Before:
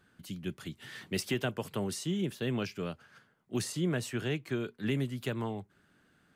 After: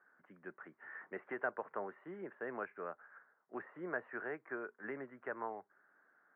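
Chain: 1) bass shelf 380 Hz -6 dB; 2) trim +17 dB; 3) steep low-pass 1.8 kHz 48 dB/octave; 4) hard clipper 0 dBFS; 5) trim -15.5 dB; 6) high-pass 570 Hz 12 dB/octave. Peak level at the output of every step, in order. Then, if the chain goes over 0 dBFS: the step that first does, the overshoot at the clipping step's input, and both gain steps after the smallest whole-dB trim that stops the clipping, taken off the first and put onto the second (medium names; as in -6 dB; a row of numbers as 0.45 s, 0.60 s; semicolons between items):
-21.5 dBFS, -4.5 dBFS, -5.5 dBFS, -5.5 dBFS, -21.0 dBFS, -24.5 dBFS; nothing clips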